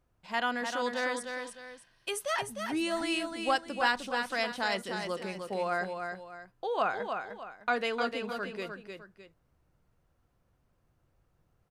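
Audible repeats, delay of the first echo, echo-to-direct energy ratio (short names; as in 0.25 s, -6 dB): 2, 0.305 s, -5.5 dB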